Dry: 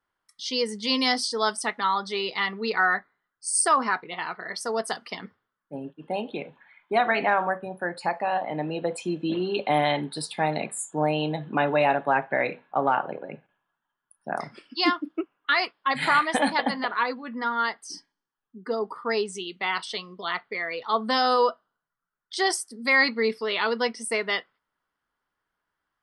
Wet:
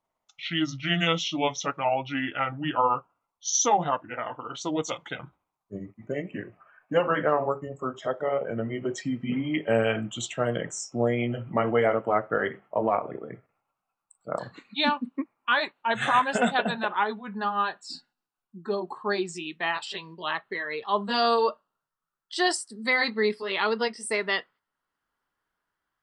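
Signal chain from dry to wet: gliding pitch shift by -7.5 st ending unshifted

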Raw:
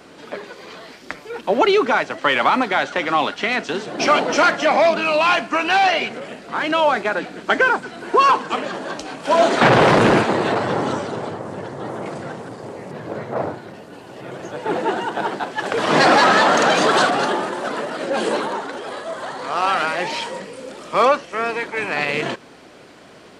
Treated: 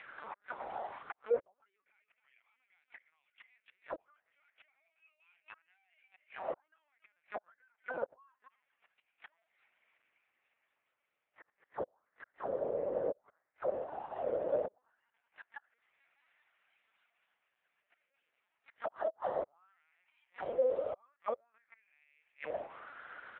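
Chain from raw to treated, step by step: on a send: feedback echo 0.282 s, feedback 18%, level -12 dB; on the sum: compressor 3:1, threshold -27 dBFS, peak gain reduction 13 dB; flipped gate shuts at -21 dBFS, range -41 dB; LPC vocoder at 8 kHz pitch kept; auto-wah 530–2400 Hz, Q 5, down, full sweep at -31 dBFS; gain +6.5 dB

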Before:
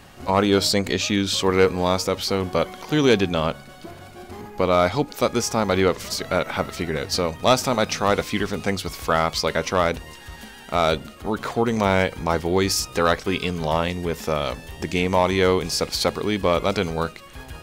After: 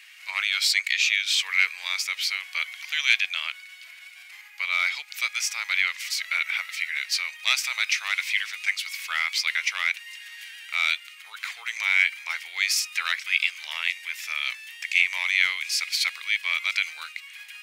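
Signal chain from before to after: ladder high-pass 2000 Hz, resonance 65%; gain +9 dB

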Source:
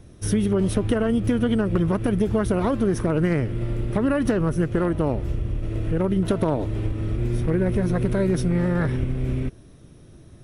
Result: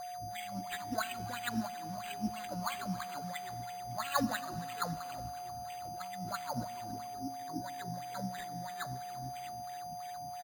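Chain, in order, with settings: Chebyshev band-stop 160–890 Hz, order 2; negative-ratio compressor -33 dBFS, ratio -1; 6.88–7.58 AM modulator 150 Hz, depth 80%; chorus voices 2, 0.34 Hz, delay 17 ms, depth 1.7 ms; wah 3 Hz 270–3800 Hz, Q 6.8; whine 720 Hz -53 dBFS; frequency-shifting echo 0.278 s, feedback 41%, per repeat +94 Hz, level -18 dB; Schroeder reverb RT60 3.5 s, combs from 33 ms, DRR 16.5 dB; careless resampling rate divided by 8×, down none, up hold; gain +13 dB

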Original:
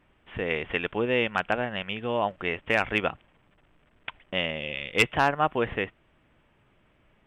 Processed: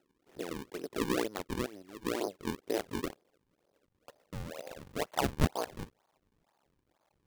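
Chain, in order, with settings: cycle switcher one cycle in 2, muted; band-pass sweep 370 Hz -> 860 Hz, 2.4–5.84; decimation with a swept rate 38×, swing 160% 2.1 Hz; gain +1.5 dB

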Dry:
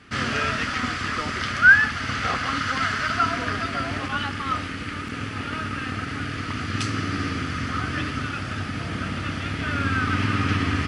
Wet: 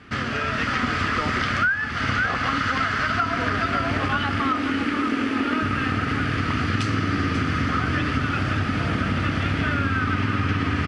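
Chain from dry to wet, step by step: 4.41–5.63 resonant low shelf 190 Hz -10 dB, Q 3; echo 0.538 s -11.5 dB; compressor 16:1, threshold -26 dBFS, peak gain reduction 18 dB; LPF 2900 Hz 6 dB/oct; AGC gain up to 4 dB; gain +4 dB

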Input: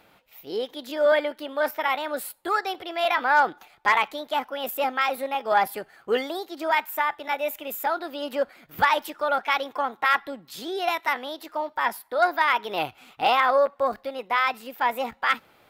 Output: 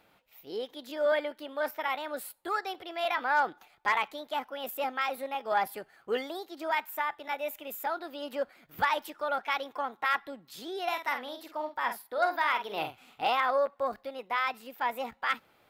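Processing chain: 10.87–13.23 doubler 49 ms -7.5 dB; gain -7 dB

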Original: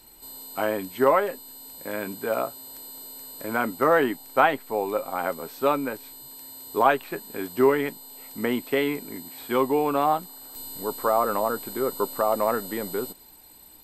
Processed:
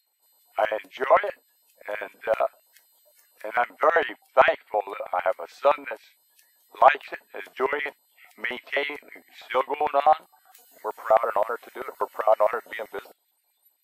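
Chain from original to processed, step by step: spectral noise reduction 21 dB; LFO high-pass square 7.7 Hz 650–2000 Hz; gain -1 dB

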